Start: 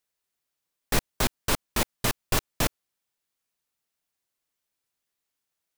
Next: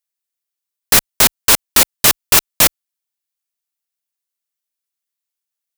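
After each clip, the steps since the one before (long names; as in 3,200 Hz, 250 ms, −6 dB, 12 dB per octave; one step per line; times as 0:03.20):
spectral tilt +2.5 dB per octave
leveller curve on the samples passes 5
level +1.5 dB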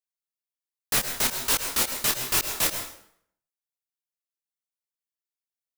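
dense smooth reverb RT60 0.64 s, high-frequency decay 0.8×, pre-delay 95 ms, DRR 6.5 dB
micro pitch shift up and down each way 43 cents
level −9 dB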